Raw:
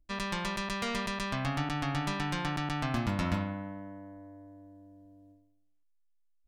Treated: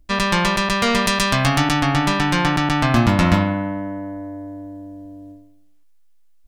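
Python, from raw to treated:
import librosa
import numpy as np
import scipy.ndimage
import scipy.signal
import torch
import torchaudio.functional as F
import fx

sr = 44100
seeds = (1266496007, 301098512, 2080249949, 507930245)

p1 = fx.high_shelf(x, sr, hz=4400.0, db=9.5, at=(1.06, 1.8))
p2 = fx.rider(p1, sr, range_db=4, speed_s=2.0)
p3 = p1 + (p2 * librosa.db_to_amplitude(3.0))
p4 = fx.doubler(p3, sr, ms=17.0, db=-12.0)
y = p4 * librosa.db_to_amplitude(7.0)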